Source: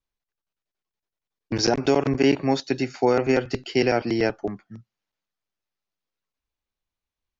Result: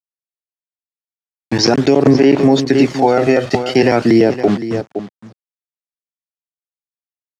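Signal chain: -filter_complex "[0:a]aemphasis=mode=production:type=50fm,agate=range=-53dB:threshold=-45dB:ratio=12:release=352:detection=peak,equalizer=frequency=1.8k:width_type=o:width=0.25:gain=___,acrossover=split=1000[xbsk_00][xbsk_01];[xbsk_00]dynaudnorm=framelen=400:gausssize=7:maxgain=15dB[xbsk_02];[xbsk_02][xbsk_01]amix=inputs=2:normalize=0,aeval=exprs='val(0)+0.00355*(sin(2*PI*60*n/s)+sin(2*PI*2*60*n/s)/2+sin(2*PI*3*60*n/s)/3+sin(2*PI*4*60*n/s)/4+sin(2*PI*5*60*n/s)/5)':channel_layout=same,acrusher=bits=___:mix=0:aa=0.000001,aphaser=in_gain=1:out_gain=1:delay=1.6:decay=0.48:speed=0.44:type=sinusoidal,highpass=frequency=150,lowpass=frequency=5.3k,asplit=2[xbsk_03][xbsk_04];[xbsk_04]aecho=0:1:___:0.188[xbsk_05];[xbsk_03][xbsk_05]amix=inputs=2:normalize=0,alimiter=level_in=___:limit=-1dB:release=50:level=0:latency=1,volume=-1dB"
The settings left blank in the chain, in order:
6, 5, 514, 7dB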